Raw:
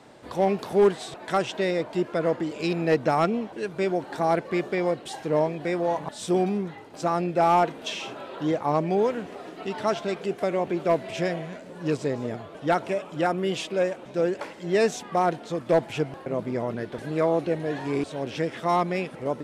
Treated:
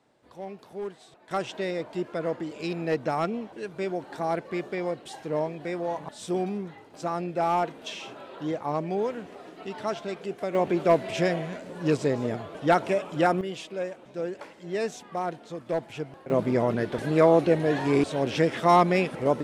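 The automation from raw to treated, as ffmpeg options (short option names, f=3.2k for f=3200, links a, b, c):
-af "asetnsamples=n=441:p=0,asendcmd='1.31 volume volume -5dB;10.55 volume volume 2dB;13.41 volume volume -7.5dB;16.3 volume volume 4.5dB',volume=-16dB"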